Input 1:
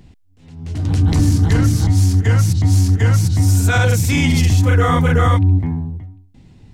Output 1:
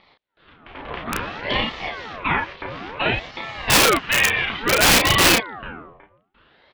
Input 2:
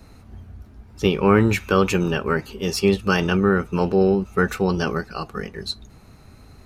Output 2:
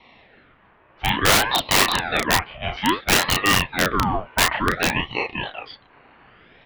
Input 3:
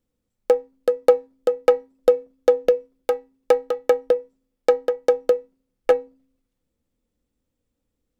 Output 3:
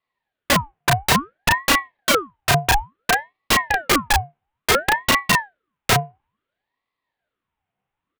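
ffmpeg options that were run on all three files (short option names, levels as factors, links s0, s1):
-filter_complex "[0:a]highpass=f=520:t=q:w=0.5412,highpass=f=520:t=q:w=1.307,lowpass=f=2900:t=q:w=0.5176,lowpass=f=2900:t=q:w=0.7071,lowpass=f=2900:t=q:w=1.932,afreqshift=-68,aeval=exprs='(mod(5.96*val(0)+1,2)-1)/5.96':c=same,asplit=2[s0][s1];[s1]adelay=33,volume=0.75[s2];[s0][s2]amix=inputs=2:normalize=0,aeval=exprs='val(0)*sin(2*PI*910*n/s+910*0.7/0.58*sin(2*PI*0.58*n/s))':c=same,volume=2.51"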